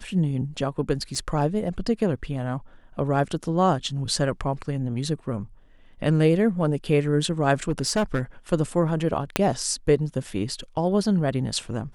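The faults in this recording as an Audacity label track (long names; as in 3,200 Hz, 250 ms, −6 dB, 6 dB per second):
1.150000	1.150000	drop-out 2.3 ms
4.160000	4.160000	drop-out 2.1 ms
7.690000	8.210000	clipping −18 dBFS
9.360000	9.360000	click −4 dBFS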